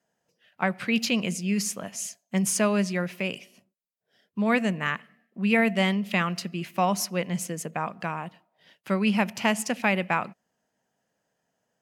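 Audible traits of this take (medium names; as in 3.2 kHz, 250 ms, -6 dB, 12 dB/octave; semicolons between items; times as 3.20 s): noise floor -79 dBFS; spectral tilt -4.0 dB/octave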